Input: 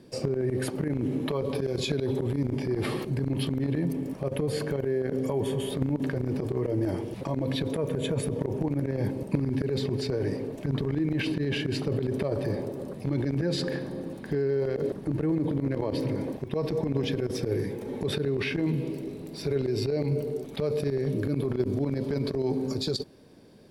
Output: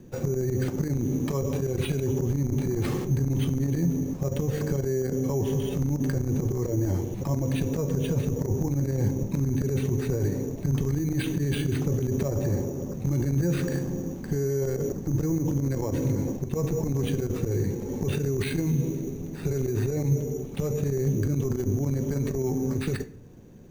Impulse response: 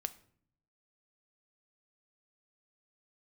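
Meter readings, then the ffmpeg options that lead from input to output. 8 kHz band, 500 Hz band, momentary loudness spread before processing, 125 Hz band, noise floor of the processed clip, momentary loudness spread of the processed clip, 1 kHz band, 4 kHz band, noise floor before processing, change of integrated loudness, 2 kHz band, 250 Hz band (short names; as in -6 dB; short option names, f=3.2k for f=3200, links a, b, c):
+6.5 dB, -1.0 dB, 4 LU, +5.0 dB, -36 dBFS, 4 LU, -1.0 dB, -6.5 dB, -41 dBFS, +2.0 dB, -2.5 dB, +1.5 dB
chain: -filter_complex "[0:a]bandreject=f=620:w=12,acrossover=split=680[a][b];[a]alimiter=limit=-23.5dB:level=0:latency=1[c];[c][b]amix=inputs=2:normalize=0,aemphasis=mode=reproduction:type=bsi,acrusher=samples=7:mix=1:aa=0.000001[d];[1:a]atrim=start_sample=2205[e];[d][e]afir=irnorm=-1:irlink=0"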